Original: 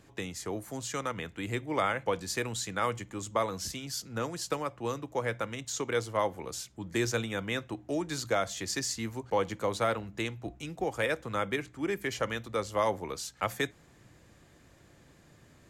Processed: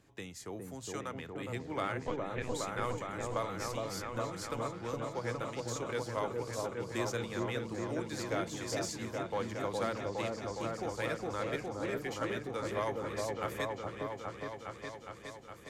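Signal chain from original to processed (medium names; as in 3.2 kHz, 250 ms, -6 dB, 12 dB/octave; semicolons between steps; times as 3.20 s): Chebyshev shaper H 4 -20 dB, 6 -25 dB, 8 -41 dB, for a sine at -16 dBFS; 2.04–2.52 s: LPC vocoder at 8 kHz pitch kept; delay with an opening low-pass 413 ms, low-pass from 750 Hz, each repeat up 1 oct, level 0 dB; trim -7.5 dB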